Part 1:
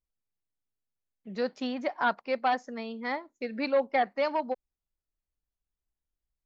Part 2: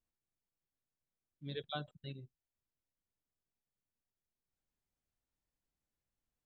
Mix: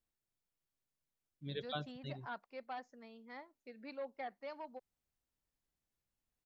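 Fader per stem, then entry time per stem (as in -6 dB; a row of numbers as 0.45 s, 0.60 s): -18.5 dB, 0.0 dB; 0.25 s, 0.00 s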